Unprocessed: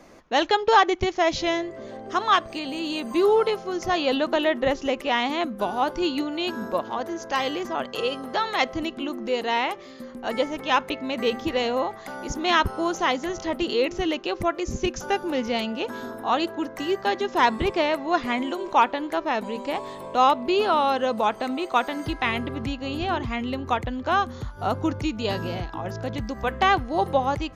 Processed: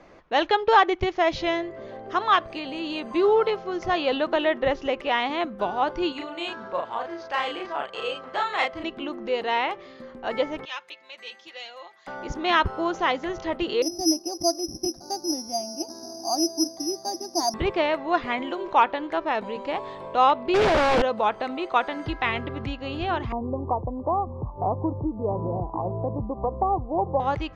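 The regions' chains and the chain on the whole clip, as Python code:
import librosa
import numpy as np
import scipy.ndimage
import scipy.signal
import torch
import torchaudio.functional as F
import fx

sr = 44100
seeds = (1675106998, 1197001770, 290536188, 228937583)

y = fx.chain(x, sr, fx.low_shelf(hz=460.0, db=-11.0),
    fx.doubler(ms=35.0, db=-2.5),
    fx.resample_linear(factor=4), at=(6.12, 8.84))
y = fx.chain(y, sr, fx.differentiator(),
    fx.comb(ms=5.6, depth=0.62), at=(10.65, 12.07))
y = fx.chain(y, sr, fx.double_bandpass(hz=470.0, octaves=1.1),
    fx.tilt_eq(slope=-3.5),
    fx.resample_bad(factor=8, down='none', up='zero_stuff'), at=(13.82, 17.54))
y = fx.chain(y, sr, fx.clip_1bit(),
    fx.low_shelf(hz=360.0, db=10.5),
    fx.doppler_dist(depth_ms=0.82), at=(20.54, 21.02))
y = fx.chain(y, sr, fx.steep_lowpass(hz=1100.0, slope=96),
    fx.band_squash(depth_pct=70), at=(23.32, 27.2))
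y = scipy.signal.sosfilt(scipy.signal.butter(2, 3600.0, 'lowpass', fs=sr, output='sos'), y)
y = fx.peak_eq(y, sr, hz=240.0, db=-6.5, octaves=0.49)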